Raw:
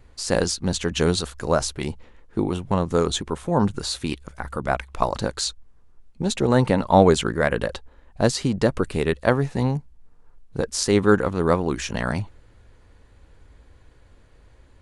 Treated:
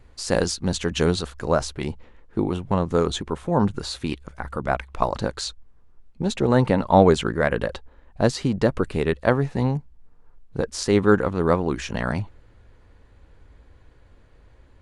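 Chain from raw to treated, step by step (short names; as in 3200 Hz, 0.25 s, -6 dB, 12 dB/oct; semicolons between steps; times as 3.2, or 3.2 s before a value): high shelf 5600 Hz -3.5 dB, from 1.06 s -9.5 dB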